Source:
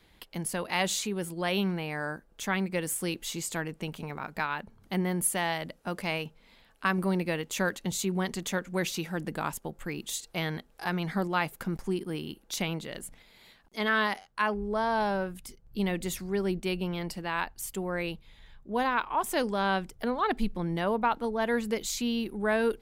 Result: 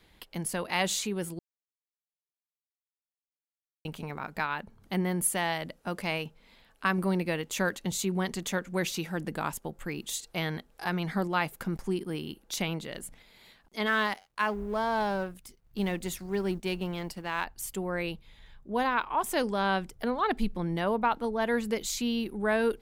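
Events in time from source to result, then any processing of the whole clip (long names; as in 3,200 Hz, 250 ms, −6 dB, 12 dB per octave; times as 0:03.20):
0:01.39–0:03.85: silence
0:13.86–0:17.45: mu-law and A-law mismatch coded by A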